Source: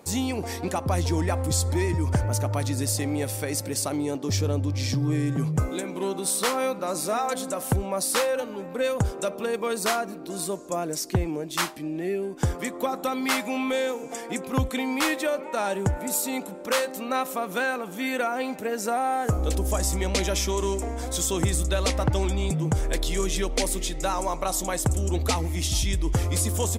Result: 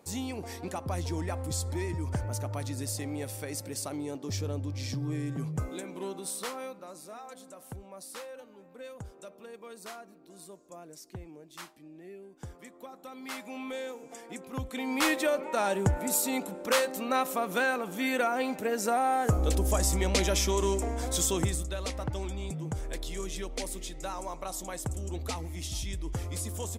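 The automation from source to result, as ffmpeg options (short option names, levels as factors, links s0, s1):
-af "volume=2.82,afade=t=out:st=6:d=0.99:silence=0.298538,afade=t=in:st=13.03:d=0.63:silence=0.421697,afade=t=in:st=14.67:d=0.41:silence=0.316228,afade=t=out:st=21.24:d=0.43:silence=0.354813"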